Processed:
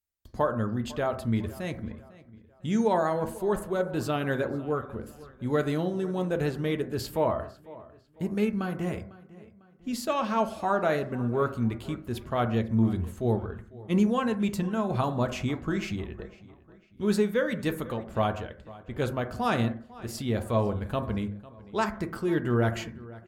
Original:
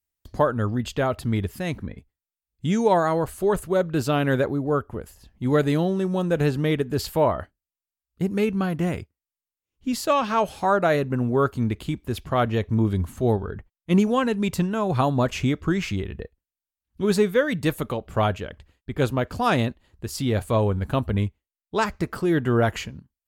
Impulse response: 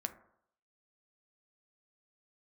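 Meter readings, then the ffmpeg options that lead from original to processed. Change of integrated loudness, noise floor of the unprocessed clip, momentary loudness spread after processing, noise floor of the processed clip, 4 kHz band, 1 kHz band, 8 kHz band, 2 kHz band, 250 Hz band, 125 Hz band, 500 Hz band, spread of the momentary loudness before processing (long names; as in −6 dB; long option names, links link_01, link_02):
−5.0 dB, below −85 dBFS, 14 LU, −56 dBFS, −6.0 dB, −5.5 dB, −6.5 dB, −5.5 dB, −4.0 dB, −6.0 dB, −5.5 dB, 11 LU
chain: -filter_complex "[0:a]asplit=2[link_01][link_02];[link_02]adelay=500,lowpass=frequency=4400:poles=1,volume=-19.5dB,asplit=2[link_03][link_04];[link_04]adelay=500,lowpass=frequency=4400:poles=1,volume=0.43,asplit=2[link_05][link_06];[link_06]adelay=500,lowpass=frequency=4400:poles=1,volume=0.43[link_07];[link_01][link_03][link_05][link_07]amix=inputs=4:normalize=0[link_08];[1:a]atrim=start_sample=2205,afade=type=out:start_time=0.25:duration=0.01,atrim=end_sample=11466[link_09];[link_08][link_09]afir=irnorm=-1:irlink=0,volume=-5dB"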